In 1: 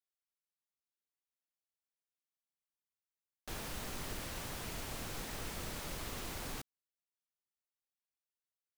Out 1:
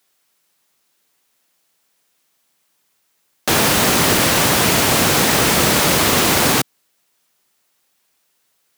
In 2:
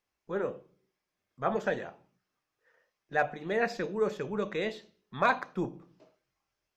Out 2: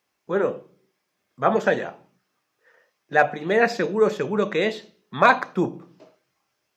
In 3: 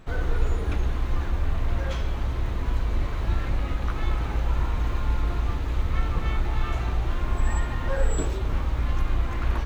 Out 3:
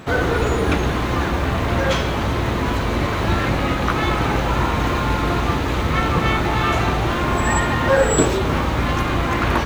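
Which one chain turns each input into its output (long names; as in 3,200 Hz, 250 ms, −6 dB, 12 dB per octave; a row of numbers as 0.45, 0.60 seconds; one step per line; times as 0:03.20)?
high-pass filter 130 Hz 12 dB per octave
normalise the peak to −2 dBFS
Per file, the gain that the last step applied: +29.5, +10.0, +15.0 decibels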